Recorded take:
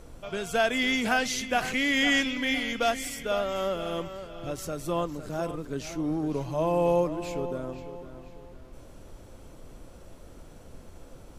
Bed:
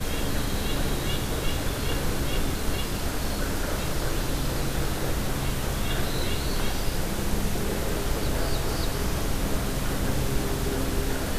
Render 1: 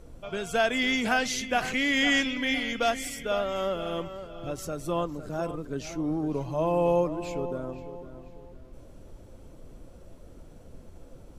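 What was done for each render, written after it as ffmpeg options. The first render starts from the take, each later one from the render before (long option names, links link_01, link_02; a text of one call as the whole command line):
ffmpeg -i in.wav -af "afftdn=noise_reduction=6:noise_floor=-49" out.wav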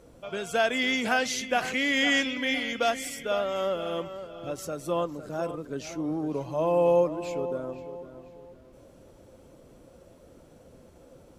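ffmpeg -i in.wav -af "highpass=frequency=170:poles=1,equalizer=frequency=530:width=7.1:gain=4" out.wav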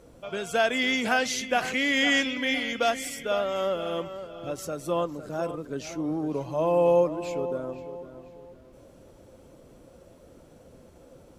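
ffmpeg -i in.wav -af "volume=1dB" out.wav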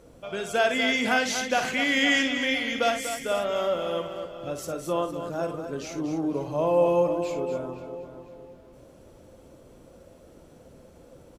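ffmpeg -i in.wav -af "aecho=1:1:55.39|242:0.355|0.355" out.wav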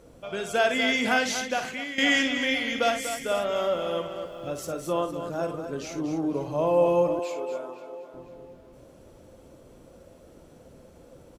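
ffmpeg -i in.wav -filter_complex "[0:a]asettb=1/sr,asplit=3[link_01][link_02][link_03];[link_01]atrim=end=4.214[link_04];[link_02]atrim=start=4.21:end=5,asetpts=PTS-STARTPTS,afade=type=in:duration=0.004:curve=qsin,afade=type=out:start_time=0.786:duration=0.004:curve=qsin,aeval=exprs='val(0)*gte(abs(val(0)),0.00188)':channel_layout=same[link_05];[link_03]atrim=start=4.996[link_06];[link_04][link_05]acrossfade=duration=0.004:curve1=hsin:curve2=qsin[link_07];[link_07][link_06]acrossfade=duration=0.004:curve1=qsin:curve2=hsin,asettb=1/sr,asplit=3[link_08][link_09][link_10];[link_08]atrim=end=7.194[link_11];[link_09]atrim=start=7.19:end=8.14,asetpts=PTS-STARTPTS,afade=type=in:duration=0.004:curve=qsin,afade=type=out:start_time=0.946:duration=0.004:curve=qsin,highpass=450[link_12];[link_10]atrim=start=8.136[link_13];[link_11][link_12]acrossfade=duration=0.004:curve1=hsin:curve2=qsin[link_14];[link_14][link_13]acrossfade=duration=0.004:curve1=qsin:curve2=hsin,asplit=2[link_15][link_16];[link_15]atrim=end=1.98,asetpts=PTS-STARTPTS,afade=type=out:start_time=1.27:duration=0.71:silence=0.188365[link_17];[link_16]atrim=start=1.98,asetpts=PTS-STARTPTS,afade=type=in:duration=0.004:curve=hsin:silence=0.188365[link_18];[link_17][link_18]concat=n=2:v=0:a=1" out.wav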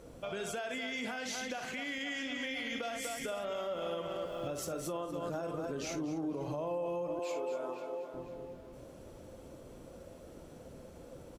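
ffmpeg -i in.wav -af "acompressor=threshold=-32dB:ratio=5,alimiter=level_in=5dB:limit=-24dB:level=0:latency=1:release=68,volume=-5dB" out.wav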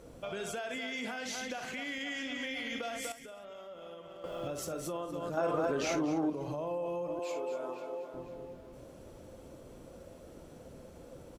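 ffmpeg -i in.wav -filter_complex "[0:a]asettb=1/sr,asplit=3[link_01][link_02][link_03];[link_01]atrim=end=0.764[link_04];[link_02]atrim=start=0.76:end=1.21,asetpts=PTS-STARTPTS,afade=type=in:duration=0.004:curve=qsin,afade=type=out:start_time=0.446:duration=0.004:curve=qsin,highpass=100[link_05];[link_03]atrim=start=1.206[link_06];[link_04][link_05]acrossfade=duration=0.004:curve1=hsin:curve2=qsin[link_07];[link_07][link_06]acrossfade=duration=0.004:curve1=qsin:curve2=hsin,asettb=1/sr,asplit=3[link_08][link_09][link_10];[link_08]atrim=end=5.374[link_11];[link_09]atrim=start=5.37:end=6.3,asetpts=PTS-STARTPTS,afade=type=in:duration=0.004:curve=qsin,afade=type=out:start_time=0.926:duration=0.004:curve=qsin,equalizer=frequency=1100:width=0.32:gain=10[link_12];[link_10]atrim=start=6.296[link_13];[link_11][link_12]acrossfade=duration=0.004:curve1=hsin:curve2=qsin[link_14];[link_14][link_13]acrossfade=duration=0.004:curve1=qsin:curve2=hsin,asplit=3[link_15][link_16][link_17];[link_15]atrim=end=3.122[link_18];[link_16]atrim=start=3.118:end=4.242,asetpts=PTS-STARTPTS,volume=-10.5dB[link_19];[link_17]atrim=start=4.238[link_20];[link_18][link_19]acrossfade=duration=0.004:curve1=hsin:curve2=hsin[link_21];[link_21][link_20]acrossfade=duration=0.004:curve1=hsin:curve2=hsin" out.wav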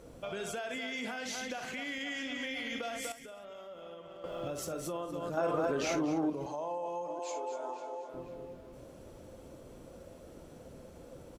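ffmpeg -i in.wav -filter_complex "[0:a]asettb=1/sr,asplit=3[link_01][link_02][link_03];[link_01]atrim=end=3.814[link_04];[link_02]atrim=start=3.81:end=4.47,asetpts=PTS-STARTPTS,afade=type=in:duration=0.004:curve=qsin,afade=type=out:start_time=0.656:duration=0.004:curve=qsin,highshelf=frequency=7000:gain=-5.5[link_05];[link_03]atrim=start=4.466[link_06];[link_04][link_05]acrossfade=duration=0.004:curve1=hsin:curve2=qsin[link_07];[link_07][link_06]acrossfade=duration=0.004:curve1=qsin:curve2=hsin,asettb=1/sr,asplit=3[link_08][link_09][link_10];[link_08]atrim=end=6.464[link_11];[link_09]atrim=start=6.46:end=8.09,asetpts=PTS-STARTPTS,afade=type=in:duration=0.004:curve=qsin,afade=type=out:start_time=1.626:duration=0.004:curve=qsin,highpass=290,equalizer=frequency=340:width_type=q:width=4:gain=-4,equalizer=frequency=510:width_type=q:width=4:gain=-3,equalizer=frequency=860:width_type=q:width=4:gain=8,equalizer=frequency=1200:width_type=q:width=4:gain=-5,equalizer=frequency=2500:width_type=q:width=4:gain=-6,equalizer=frequency=6500:width_type=q:width=4:gain=8,lowpass=frequency=9800:width=0.5412,lowpass=frequency=9800:width=1.3066[link_12];[link_10]atrim=start=8.086[link_13];[link_11][link_12]acrossfade=duration=0.004:curve1=hsin:curve2=qsin[link_14];[link_14][link_13]acrossfade=duration=0.004:curve1=qsin:curve2=hsin" out.wav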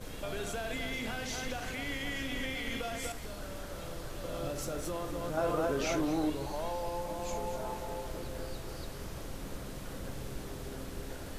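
ffmpeg -i in.wav -i bed.wav -filter_complex "[1:a]volume=-15.5dB[link_01];[0:a][link_01]amix=inputs=2:normalize=0" out.wav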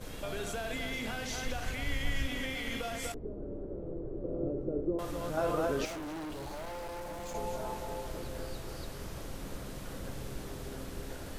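ffmpeg -i in.wav -filter_complex "[0:a]asettb=1/sr,asplit=3[link_01][link_02][link_03];[link_01]atrim=end=1.254[link_04];[link_02]atrim=start=1.25:end=2.27,asetpts=PTS-STARTPTS,afade=type=in:duration=0.004:curve=qsin,afade=type=out:start_time=1.016:duration=0.004:curve=qsin,asubboost=boost=11:cutoff=130[link_05];[link_03]atrim=start=2.266[link_06];[link_04][link_05]acrossfade=duration=0.004:curve1=hsin:curve2=qsin[link_07];[link_07][link_06]acrossfade=duration=0.004:curve1=qsin:curve2=hsin,asettb=1/sr,asplit=3[link_08][link_09][link_10];[link_08]atrim=end=3.144[link_11];[link_09]atrim=start=3.14:end=4.99,asetpts=PTS-STARTPTS,afade=type=in:duration=0.004:curve=qsin,afade=type=out:start_time=1.846:duration=0.004:curve=qsin,lowpass=frequency=390:width_type=q:width=3.6[link_12];[link_10]atrim=start=4.986[link_13];[link_11][link_12]acrossfade=duration=0.004:curve1=hsin:curve2=qsin[link_14];[link_14][link_13]acrossfade=duration=0.004:curve1=qsin:curve2=hsin,asettb=1/sr,asplit=3[link_15][link_16][link_17];[link_15]atrim=end=5.854[link_18];[link_16]atrim=start=5.85:end=7.35,asetpts=PTS-STARTPTS,afade=type=in:duration=0.004:curve=qsin,afade=type=out:start_time=1.496:duration=0.004:curve=qsin,asoftclip=type=hard:threshold=-38.5dB[link_19];[link_17]atrim=start=7.346[link_20];[link_18][link_19]acrossfade=duration=0.004:curve1=hsin:curve2=qsin[link_21];[link_21][link_20]acrossfade=duration=0.004:curve1=qsin:curve2=hsin" out.wav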